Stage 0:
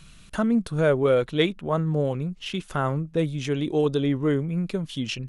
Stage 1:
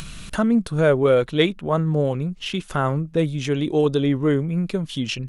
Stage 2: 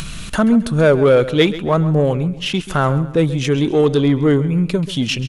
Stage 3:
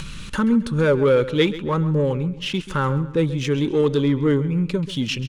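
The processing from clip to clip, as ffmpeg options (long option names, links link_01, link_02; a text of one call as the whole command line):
ffmpeg -i in.wav -af "acompressor=mode=upward:threshold=-29dB:ratio=2.5,volume=3.5dB" out.wav
ffmpeg -i in.wav -filter_complex "[0:a]asplit=2[link_01][link_02];[link_02]asoftclip=type=tanh:threshold=-21dB,volume=-3dB[link_03];[link_01][link_03]amix=inputs=2:normalize=0,aecho=1:1:134|268|402:0.178|0.064|0.023,volume=2.5dB" out.wav
ffmpeg -i in.wav -af "asuperstop=centerf=690:order=8:qfactor=3.6,adynamicsmooth=sensitivity=5:basefreq=7500,volume=-4.5dB" out.wav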